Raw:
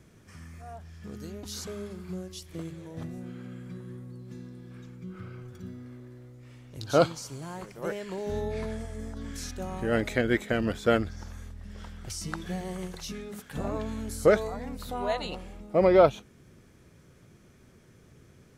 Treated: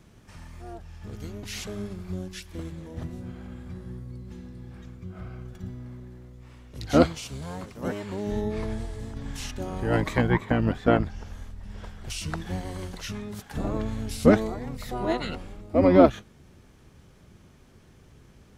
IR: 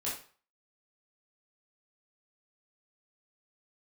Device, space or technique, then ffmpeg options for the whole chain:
octave pedal: -filter_complex "[0:a]asettb=1/sr,asplit=3[a][b][c];[a]atrim=end=10.274[d];[b]atrim=start=10.27:end=11.84,asetpts=PTS-STARTPTS,afade=t=in:d=0.004:c=qsin,afade=t=out:st=1.566:d=0.004:c=qsin,acrossover=split=3500[e][f];[f]acompressor=threshold=-58dB:ratio=4:attack=1:release=60[g];[e][g]amix=inputs=2:normalize=0[h];[c]atrim=start=11.836[i];[d][h]acrossfade=d=0.004:c1=hsin:c2=qsin[j];[j][i]acrossfade=d=0.004:c1=qsin:c2=hsin,asplit=2[k][l];[l]asetrate=22050,aresample=44100,atempo=2,volume=0dB[m];[k][m]amix=inputs=2:normalize=0"

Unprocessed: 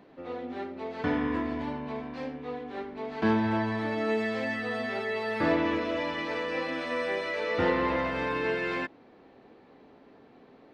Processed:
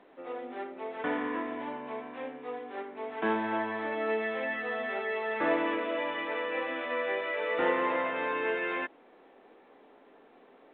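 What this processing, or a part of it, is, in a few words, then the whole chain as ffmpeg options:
telephone: -af "highpass=370,lowpass=3.4k" -ar 8000 -c:a pcm_alaw

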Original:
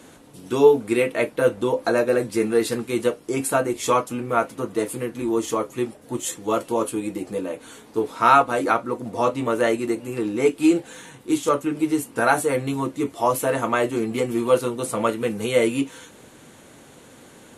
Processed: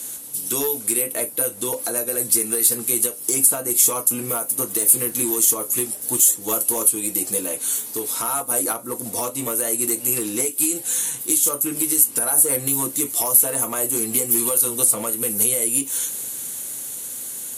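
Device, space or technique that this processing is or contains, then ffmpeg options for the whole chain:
FM broadcast chain: -filter_complex "[0:a]highpass=63,dynaudnorm=f=380:g=11:m=11.5dB,acrossover=split=1200|8000[a][b][c];[a]acompressor=threshold=-20dB:ratio=4[d];[b]acompressor=threshold=-39dB:ratio=4[e];[c]acompressor=threshold=-39dB:ratio=4[f];[d][e][f]amix=inputs=3:normalize=0,aemphasis=mode=production:type=75fm,alimiter=limit=-14dB:level=0:latency=1:release=223,asoftclip=type=hard:threshold=-18dB,lowpass=f=15k:w=0.5412,lowpass=f=15k:w=1.3066,aemphasis=mode=production:type=75fm,volume=-1.5dB"

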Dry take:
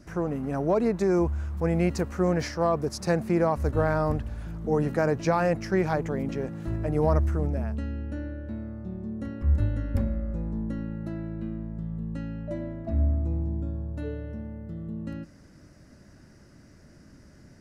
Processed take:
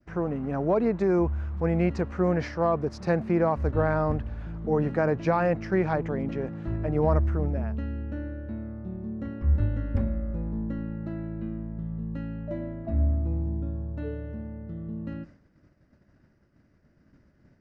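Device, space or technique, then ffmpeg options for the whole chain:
hearing-loss simulation: -af "lowpass=3.1k,agate=range=-33dB:threshold=-44dB:ratio=3:detection=peak"

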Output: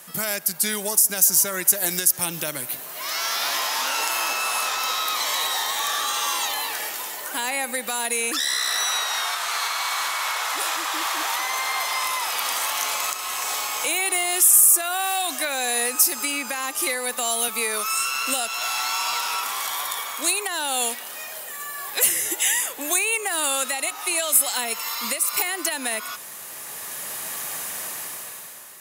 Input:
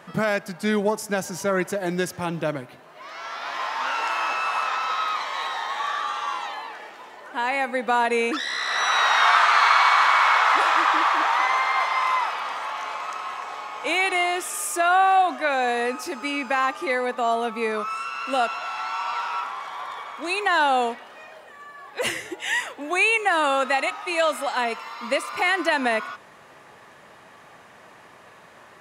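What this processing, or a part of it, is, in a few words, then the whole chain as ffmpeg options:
FM broadcast chain: -filter_complex "[0:a]highpass=77,dynaudnorm=f=260:g=7:m=14dB,acrossover=split=690|1700[a][b][c];[a]acompressor=threshold=-25dB:ratio=4[d];[b]acompressor=threshold=-29dB:ratio=4[e];[c]acompressor=threshold=-29dB:ratio=4[f];[d][e][f]amix=inputs=3:normalize=0,aemphasis=mode=production:type=75fm,alimiter=limit=-12dB:level=0:latency=1:release=341,asoftclip=type=hard:threshold=-14.5dB,lowpass=f=15k:w=0.5412,lowpass=f=15k:w=1.3066,aemphasis=mode=production:type=75fm,asettb=1/sr,asplit=3[g][h][i];[g]atrim=end=17.484[j];[h]atrim=start=17.48:end=17.9,asetpts=PTS-STARTPTS,afade=t=in:d=0.004:c=qsin,afade=t=out:st=0.416:d=0.004:c=qsin,highpass=240[k];[i]atrim=start=17.896[l];[j][k]acrossfade=d=0.004:c1=hsin:c2=qsin[m];[m][l]acrossfade=d=0.004:c1=qsin:c2=hsin,volume=-5dB"

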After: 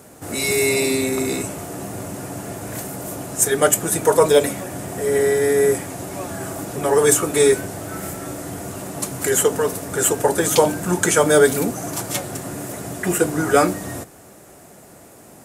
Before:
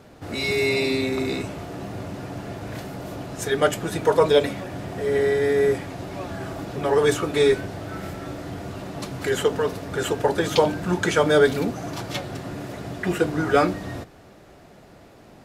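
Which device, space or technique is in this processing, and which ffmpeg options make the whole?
budget condenser microphone: -af "highpass=f=110:p=1,highshelf=f=6k:t=q:w=1.5:g=13.5,volume=3.5dB"

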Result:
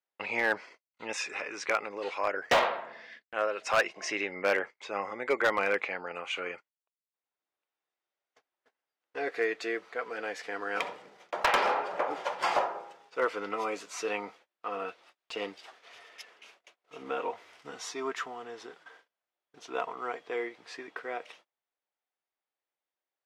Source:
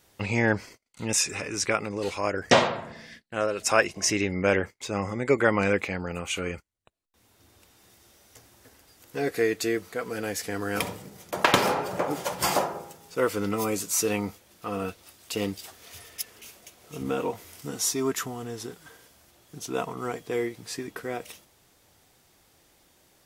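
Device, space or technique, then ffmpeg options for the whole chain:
walkie-talkie: -filter_complex "[0:a]highpass=580,lowpass=2.8k,asoftclip=type=hard:threshold=-18.5dB,agate=range=-28dB:threshold=-56dB:ratio=16:detection=peak,asettb=1/sr,asplit=3[a][b][c];[a]atrim=end=17.014[d];[b]atrim=start=17.01:end=17.89,asetpts=PTS-STARTPTS,afade=t=in:d=0.004:c=qsin,afade=t=out:st=0.876:d=0.004:c=qsin,asubboost=boost=8.5:cutoff=170[e];[c]atrim=start=17.886[f];[d][e]acrossfade=d=0.004:c1=hsin:c2=qsin[g];[g][f]acrossfade=d=0.004:c1=qsin:c2=hsin"

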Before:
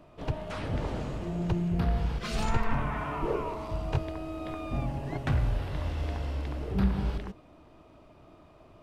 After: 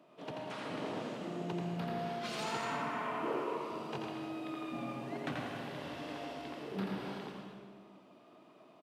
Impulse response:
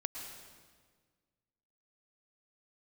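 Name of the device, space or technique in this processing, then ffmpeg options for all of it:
PA in a hall: -filter_complex "[0:a]highpass=f=190:w=0.5412,highpass=f=190:w=1.3066,equalizer=f=3.3k:t=o:w=0.62:g=3,aecho=1:1:85:0.631[a];[1:a]atrim=start_sample=2205[b];[a][b]afir=irnorm=-1:irlink=0,volume=-5dB"

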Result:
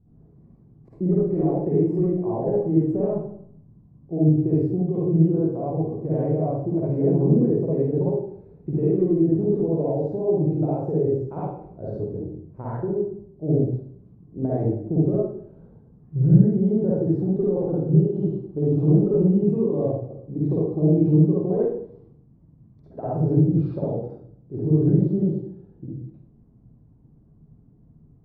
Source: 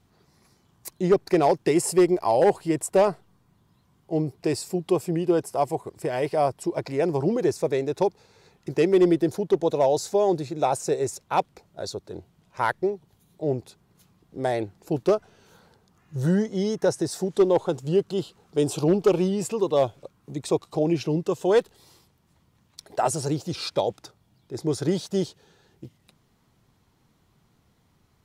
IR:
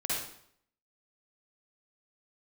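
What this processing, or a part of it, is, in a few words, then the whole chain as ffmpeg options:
television next door: -filter_complex "[0:a]acompressor=threshold=-23dB:ratio=6,lowpass=270[a];[1:a]atrim=start_sample=2205[b];[a][b]afir=irnorm=-1:irlink=0,volume=7.5dB"

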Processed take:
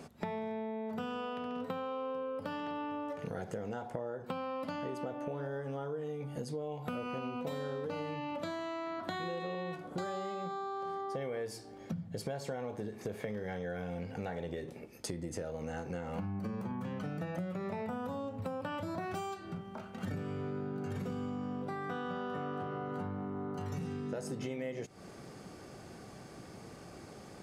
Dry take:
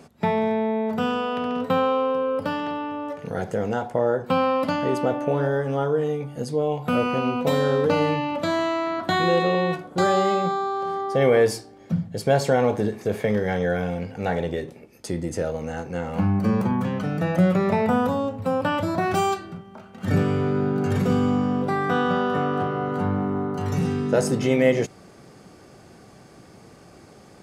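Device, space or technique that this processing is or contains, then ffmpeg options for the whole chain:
serial compression, leveller first: -af "acompressor=threshold=-30dB:ratio=1.5,acompressor=threshold=-34dB:ratio=6,volume=-2dB"

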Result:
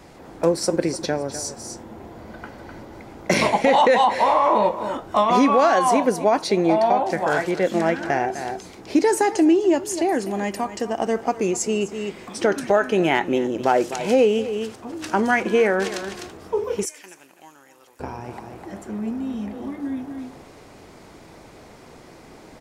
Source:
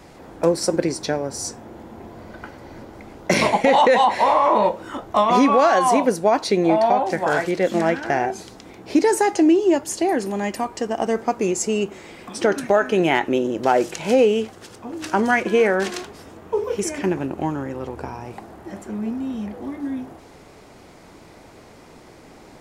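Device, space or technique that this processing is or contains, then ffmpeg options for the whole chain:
ducked delay: -filter_complex "[0:a]asplit=3[a][b][c];[b]adelay=253,volume=-4dB[d];[c]apad=whole_len=1008142[e];[d][e]sidechaincompress=threshold=-39dB:ratio=3:attack=16:release=119[f];[a][f]amix=inputs=2:normalize=0,asettb=1/sr,asplit=3[g][h][i];[g]atrim=end=16.854[j];[h]atrim=start=16.85:end=18,asetpts=PTS-STARTPTS,afade=t=in:d=0.004:c=qsin,afade=t=out:st=1.146:d=0.004:c=qsin,aderivative[k];[i]atrim=start=17.996[l];[j][k]acrossfade=d=0.004:c1=hsin:c2=qsin[m];[m][l]acrossfade=d=0.004:c1=qsin:c2=hsin,volume=-1dB"

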